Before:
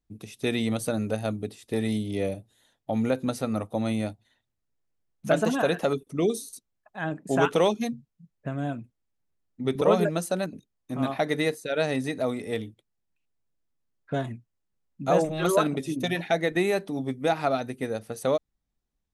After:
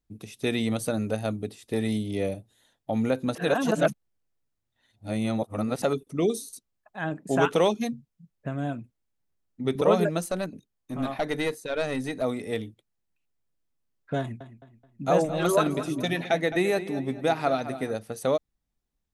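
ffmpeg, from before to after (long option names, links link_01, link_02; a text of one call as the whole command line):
ffmpeg -i in.wav -filter_complex "[0:a]asettb=1/sr,asplit=3[link_01][link_02][link_03];[link_01]atrim=end=10.214[link_04];[link_02]atrim=start=10.21:end=12.22,asetpts=PTS-STARTPTS,afade=type=in:duration=0.004:curve=qsin,afade=type=out:start_time=2.006:duration=0.004:curve=qsin,aeval=exprs='(tanh(7.94*val(0)+0.35)-tanh(0.35))/7.94':channel_layout=same[link_05];[link_03]atrim=start=12.216[link_06];[link_04][link_05]acrossfade=duration=0.004:curve1=hsin:curve2=qsin[link_07];[link_07][link_06]acrossfade=duration=0.004:curve1=qsin:curve2=hsin,asettb=1/sr,asplit=3[link_08][link_09][link_10];[link_08]atrim=end=14.194[link_11];[link_09]atrim=start=14.19:end=17.95,asetpts=PTS-STARTPTS,afade=type=in:duration=0.004:curve=qsin,afade=type=out:start_time=3.756:duration=0.004:curve=qsin,asplit=2[link_12][link_13];[link_13]adelay=214,lowpass=frequency=4400:poles=1,volume=-12.5dB,asplit=2[link_14][link_15];[link_15]adelay=214,lowpass=frequency=4400:poles=1,volume=0.4,asplit=2[link_16][link_17];[link_17]adelay=214,lowpass=frequency=4400:poles=1,volume=0.4,asplit=2[link_18][link_19];[link_19]adelay=214,lowpass=frequency=4400:poles=1,volume=0.4[link_20];[link_12][link_14][link_16][link_18][link_20]amix=inputs=5:normalize=0,atrim=end_sample=165816[link_21];[link_10]atrim=start=17.946[link_22];[link_11][link_21]acrossfade=duration=0.004:curve1=hsin:curve2=qsin[link_23];[link_23][link_22]acrossfade=duration=0.004:curve1=qsin:curve2=hsin,asplit=3[link_24][link_25][link_26];[link_24]atrim=end=3.352[link_27];[link_25]atrim=start=3.348:end=5.822,asetpts=PTS-STARTPTS,areverse[link_28];[link_26]atrim=start=5.818[link_29];[link_27][link_28]acrossfade=duration=0.004:curve1=hsin:curve2=hsin[link_30];[link_30][link_29]acrossfade=duration=0.004:curve1=hsin:curve2=hsin" out.wav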